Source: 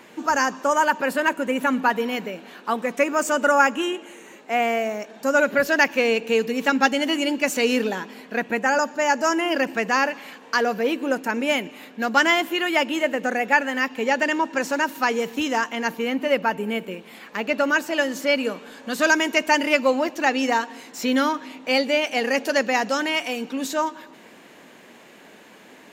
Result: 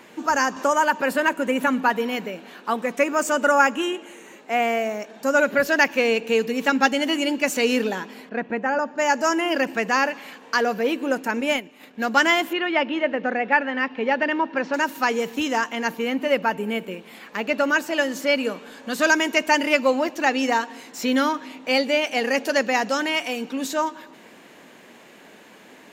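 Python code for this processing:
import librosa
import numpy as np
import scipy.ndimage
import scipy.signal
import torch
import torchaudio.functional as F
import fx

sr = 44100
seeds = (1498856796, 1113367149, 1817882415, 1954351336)

y = fx.band_squash(x, sr, depth_pct=40, at=(0.56, 1.68))
y = fx.spacing_loss(y, sr, db_at_10k=27, at=(8.29, 8.98))
y = fx.transient(y, sr, attack_db=-1, sustain_db=-9, at=(11.4, 11.99))
y = fx.bessel_lowpass(y, sr, hz=3000.0, order=6, at=(12.53, 14.74))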